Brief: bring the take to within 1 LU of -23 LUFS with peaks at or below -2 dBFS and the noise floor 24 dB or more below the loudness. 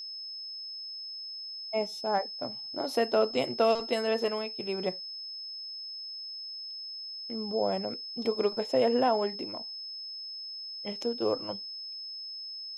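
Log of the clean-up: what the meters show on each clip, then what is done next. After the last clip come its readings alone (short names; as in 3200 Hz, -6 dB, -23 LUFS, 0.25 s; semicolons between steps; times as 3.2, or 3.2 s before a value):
steady tone 5200 Hz; tone level -38 dBFS; loudness -32.0 LUFS; peak -14.0 dBFS; loudness target -23.0 LUFS
-> notch 5200 Hz, Q 30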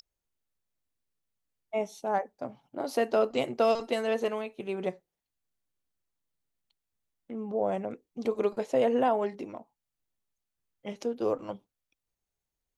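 steady tone none; loudness -30.5 LUFS; peak -14.5 dBFS; loudness target -23.0 LUFS
-> gain +7.5 dB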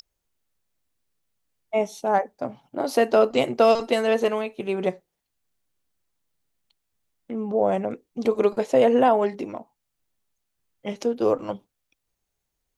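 loudness -23.0 LUFS; peak -7.0 dBFS; noise floor -80 dBFS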